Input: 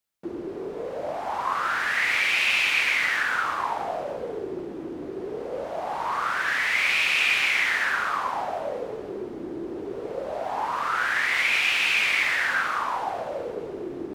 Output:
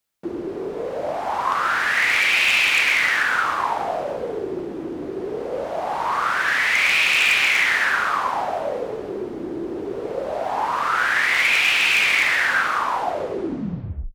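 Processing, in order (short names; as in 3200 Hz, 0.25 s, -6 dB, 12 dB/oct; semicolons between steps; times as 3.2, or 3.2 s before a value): tape stop at the end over 1.14 s; wavefolder -15 dBFS; gain +5 dB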